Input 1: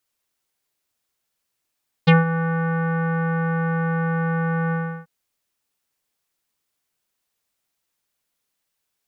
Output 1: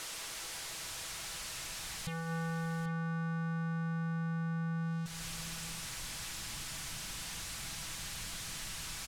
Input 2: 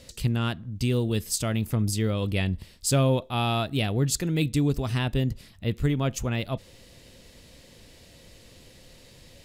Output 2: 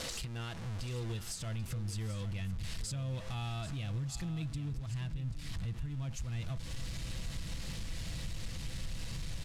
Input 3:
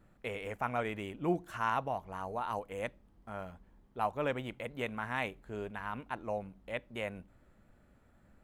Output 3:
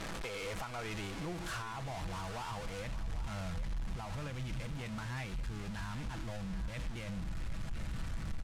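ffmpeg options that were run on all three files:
-af "aeval=exprs='val(0)+0.5*0.0447*sgn(val(0))':c=same,lowpass=8900,lowshelf=f=450:g=-6,aecho=1:1:6.1:0.3,asubboost=boost=9.5:cutoff=140,acompressor=threshold=0.0251:ratio=3,alimiter=level_in=1.33:limit=0.0631:level=0:latency=1:release=259,volume=0.75,aecho=1:1:788:0.224,volume=0.562"

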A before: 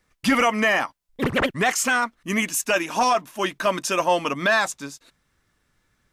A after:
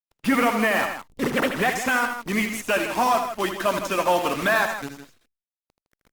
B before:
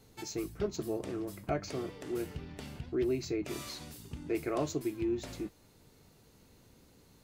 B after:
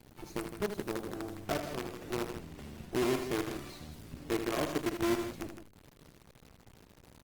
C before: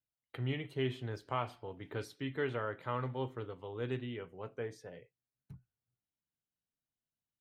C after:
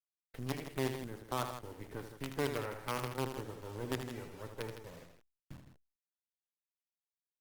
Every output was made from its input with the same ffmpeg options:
-filter_complex "[0:a]aeval=exprs='if(lt(val(0),0),0.708*val(0),val(0))':c=same,bass=f=250:g=7,treble=f=4000:g=-10,acrossover=split=200|830|2600[s0][s1][s2][s3];[s0]acompressor=threshold=0.00708:ratio=20[s4];[s4][s1][s2][s3]amix=inputs=4:normalize=0,acrusher=bits=6:dc=4:mix=0:aa=0.000001,aecho=1:1:78.72|160.3:0.398|0.316" -ar 48000 -c:a libopus -b:a 24k

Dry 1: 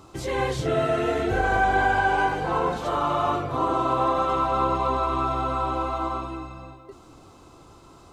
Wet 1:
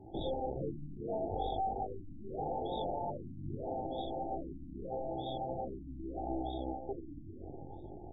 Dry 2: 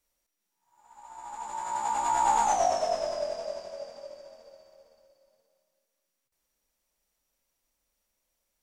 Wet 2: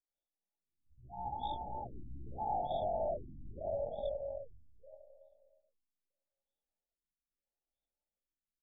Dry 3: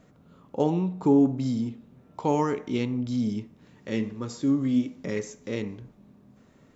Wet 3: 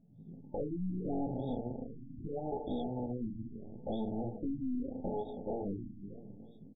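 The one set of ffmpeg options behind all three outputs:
-filter_complex "[0:a]aeval=exprs='if(lt(val(0),0),0.447*val(0),val(0))':c=same,alimiter=limit=0.0841:level=0:latency=1:release=165,highshelf=f=3400:g=7.5,afftdn=nr=24:nf=-47,acompressor=threshold=0.0158:ratio=6,flanger=delay=18:depth=3.7:speed=0.47,asplit=2[s0][s1];[s1]aecho=0:1:317|634|951|1268:0.224|0.0828|0.0306|0.0113[s2];[s0][s2]amix=inputs=2:normalize=0,aeval=exprs='(tanh(398*val(0)+0.75)-tanh(0.75))/398':c=same,firequalizer=gain_entry='entry(130,0);entry(1300,8);entry(4900,5);entry(7900,0)':delay=0.05:min_phase=1,dynaudnorm=f=110:g=3:m=2.24,afftfilt=real='re*(1-between(b*sr/4096,890,3300))':imag='im*(1-between(b*sr/4096,890,3300))':win_size=4096:overlap=0.75,afftfilt=real='re*lt(b*sr/1024,310*pow(3800/310,0.5+0.5*sin(2*PI*0.79*pts/sr)))':imag='im*lt(b*sr/1024,310*pow(3800/310,0.5+0.5*sin(2*PI*0.79*pts/sr)))':win_size=1024:overlap=0.75,volume=3.55"

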